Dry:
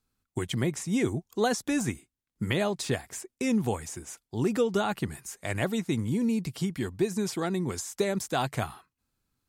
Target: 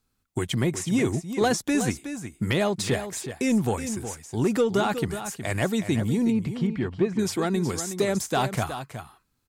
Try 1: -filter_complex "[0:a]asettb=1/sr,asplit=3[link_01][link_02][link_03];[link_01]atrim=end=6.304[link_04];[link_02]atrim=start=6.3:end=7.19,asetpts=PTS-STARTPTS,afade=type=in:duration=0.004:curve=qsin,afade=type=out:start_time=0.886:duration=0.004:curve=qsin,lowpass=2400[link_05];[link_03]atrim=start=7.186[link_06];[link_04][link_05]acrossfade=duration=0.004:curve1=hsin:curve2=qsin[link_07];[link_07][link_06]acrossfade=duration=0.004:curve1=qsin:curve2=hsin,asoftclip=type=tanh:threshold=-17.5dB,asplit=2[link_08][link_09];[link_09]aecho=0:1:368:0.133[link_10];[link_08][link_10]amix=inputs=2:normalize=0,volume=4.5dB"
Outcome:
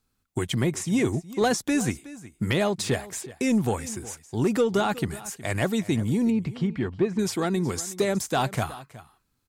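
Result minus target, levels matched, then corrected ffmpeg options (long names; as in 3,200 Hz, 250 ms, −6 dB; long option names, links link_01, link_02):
echo-to-direct −7.5 dB
-filter_complex "[0:a]asettb=1/sr,asplit=3[link_01][link_02][link_03];[link_01]atrim=end=6.304[link_04];[link_02]atrim=start=6.3:end=7.19,asetpts=PTS-STARTPTS,afade=type=in:duration=0.004:curve=qsin,afade=type=out:start_time=0.886:duration=0.004:curve=qsin,lowpass=2400[link_05];[link_03]atrim=start=7.186[link_06];[link_04][link_05]acrossfade=duration=0.004:curve1=hsin:curve2=qsin[link_07];[link_07][link_06]acrossfade=duration=0.004:curve1=qsin:curve2=hsin,asoftclip=type=tanh:threshold=-17.5dB,asplit=2[link_08][link_09];[link_09]aecho=0:1:368:0.316[link_10];[link_08][link_10]amix=inputs=2:normalize=0,volume=4.5dB"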